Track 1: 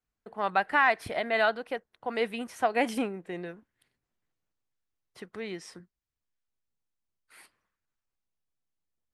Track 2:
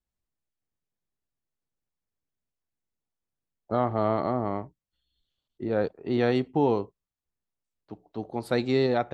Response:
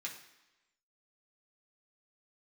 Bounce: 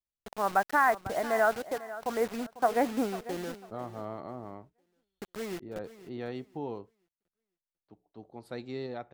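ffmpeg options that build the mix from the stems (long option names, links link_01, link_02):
-filter_complex "[0:a]lowpass=frequency=1600:width=0.5412,lowpass=frequency=1600:width=1.3066,acrusher=bits=6:mix=0:aa=0.000001,volume=0.5dB,asplit=2[link_01][link_02];[link_02]volume=-15.5dB[link_03];[1:a]volume=-14dB[link_04];[link_03]aecho=0:1:497|994|1491|1988:1|0.25|0.0625|0.0156[link_05];[link_01][link_04][link_05]amix=inputs=3:normalize=0"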